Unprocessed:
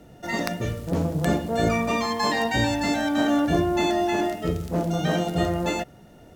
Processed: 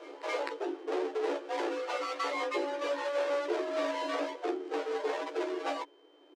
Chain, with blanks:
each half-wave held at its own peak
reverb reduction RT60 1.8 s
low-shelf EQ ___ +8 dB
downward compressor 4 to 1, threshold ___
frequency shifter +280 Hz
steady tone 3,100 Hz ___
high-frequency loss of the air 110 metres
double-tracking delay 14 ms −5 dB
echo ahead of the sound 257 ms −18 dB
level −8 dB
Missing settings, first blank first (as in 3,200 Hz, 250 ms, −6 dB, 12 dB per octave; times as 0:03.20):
80 Hz, −24 dBFS, −54 dBFS